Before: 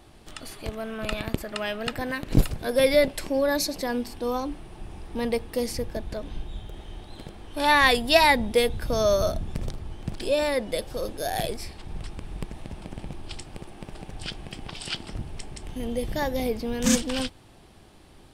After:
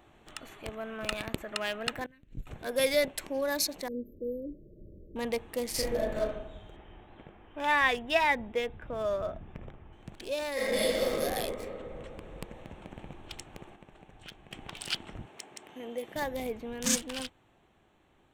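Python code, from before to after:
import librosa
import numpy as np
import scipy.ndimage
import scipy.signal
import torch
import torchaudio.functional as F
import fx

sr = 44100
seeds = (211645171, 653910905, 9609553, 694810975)

y = fx.tone_stack(x, sr, knobs='10-0-1', at=(2.06, 2.47))
y = fx.brickwall_bandstop(y, sr, low_hz=620.0, high_hz=12000.0, at=(3.88, 5.16))
y = fx.reverb_throw(y, sr, start_s=5.7, length_s=0.55, rt60_s=0.87, drr_db=-7.0)
y = fx.savgol(y, sr, points=25, at=(6.76, 9.93))
y = fx.reverb_throw(y, sr, start_s=10.53, length_s=0.61, rt60_s=2.9, drr_db=-11.0)
y = fx.highpass(y, sr, hz=290.0, slope=12, at=(15.26, 16.16))
y = fx.edit(y, sr, fx.clip_gain(start_s=13.76, length_s=0.75, db=-7.0), tone=tone)
y = fx.wiener(y, sr, points=9)
y = fx.tilt_eq(y, sr, slope=2.0)
y = fx.rider(y, sr, range_db=4, speed_s=2.0)
y = y * 10.0 ** (-7.0 / 20.0)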